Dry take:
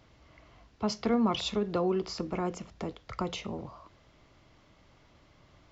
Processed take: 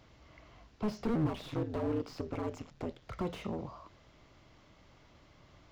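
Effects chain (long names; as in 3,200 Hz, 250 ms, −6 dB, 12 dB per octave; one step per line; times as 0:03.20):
0:01.15–0:03.02: ring modulation 79 Hz
slew-rate limiting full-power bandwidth 13 Hz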